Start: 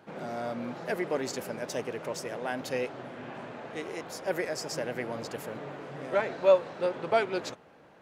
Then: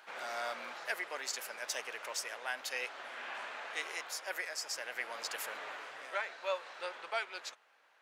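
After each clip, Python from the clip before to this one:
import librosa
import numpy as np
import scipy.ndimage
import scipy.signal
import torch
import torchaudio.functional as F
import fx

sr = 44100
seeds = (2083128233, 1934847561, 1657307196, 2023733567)

y = scipy.signal.sosfilt(scipy.signal.butter(2, 1300.0, 'highpass', fs=sr, output='sos'), x)
y = fx.rider(y, sr, range_db=5, speed_s=0.5)
y = y * librosa.db_to_amplitude(1.5)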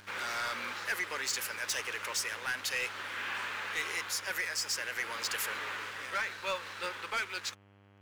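y = fx.peak_eq(x, sr, hz=680.0, db=-14.5, octaves=0.61)
y = fx.leveller(y, sr, passes=3)
y = fx.dmg_buzz(y, sr, base_hz=100.0, harmonics=33, level_db=-58.0, tilt_db=-5, odd_only=False)
y = y * librosa.db_to_amplitude(-3.0)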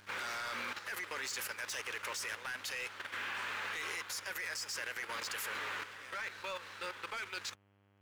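y = fx.level_steps(x, sr, step_db=10)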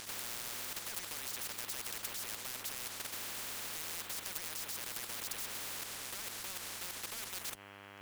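y = fx.spectral_comp(x, sr, ratio=10.0)
y = y * librosa.db_to_amplitude(6.5)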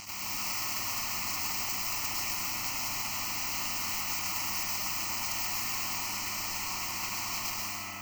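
y = fx.fixed_phaser(x, sr, hz=2400.0, stages=8)
y = y + 10.0 ** (-8.0 / 20.0) * np.pad(y, (int(103 * sr / 1000.0), 0))[:len(y)]
y = fx.rev_plate(y, sr, seeds[0], rt60_s=3.1, hf_ratio=0.6, predelay_ms=105, drr_db=-5.0)
y = y * librosa.db_to_amplitude(6.0)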